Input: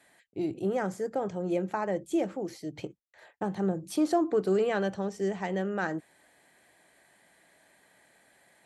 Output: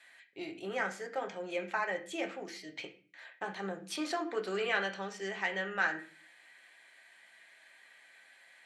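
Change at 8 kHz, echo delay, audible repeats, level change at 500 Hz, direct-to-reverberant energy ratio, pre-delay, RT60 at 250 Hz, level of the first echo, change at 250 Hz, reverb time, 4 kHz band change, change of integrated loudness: -2.0 dB, none, none, -8.5 dB, 3.0 dB, 5 ms, 0.65 s, none, -12.5 dB, 0.40 s, +5.0 dB, -5.5 dB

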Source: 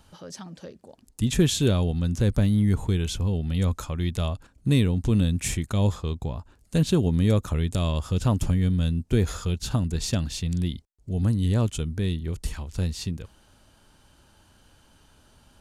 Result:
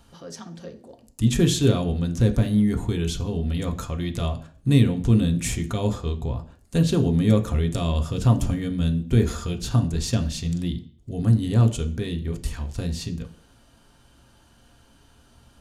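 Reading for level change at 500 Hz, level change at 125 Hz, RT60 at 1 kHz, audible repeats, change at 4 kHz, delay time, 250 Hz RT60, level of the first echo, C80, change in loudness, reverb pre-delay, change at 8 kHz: +2.0 dB, +2.0 dB, 0.45 s, none, +0.5 dB, none, 0.50 s, none, 18.0 dB, +2.0 dB, 3 ms, +0.5 dB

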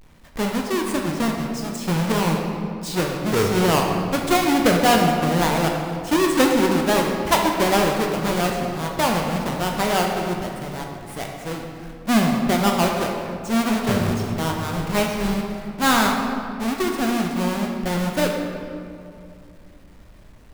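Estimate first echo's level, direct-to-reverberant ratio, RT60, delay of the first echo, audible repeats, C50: none, 0.5 dB, 2.5 s, none, none, 2.5 dB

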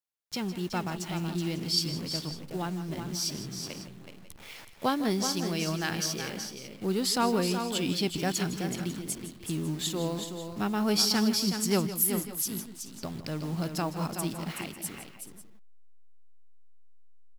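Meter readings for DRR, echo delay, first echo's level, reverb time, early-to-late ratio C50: none, 0.156 s, -14.5 dB, none, none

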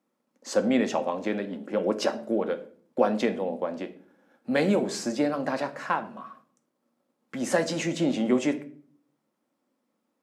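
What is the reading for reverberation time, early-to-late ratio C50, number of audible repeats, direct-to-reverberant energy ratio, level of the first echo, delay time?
0.50 s, 14.5 dB, none, 7.5 dB, none, none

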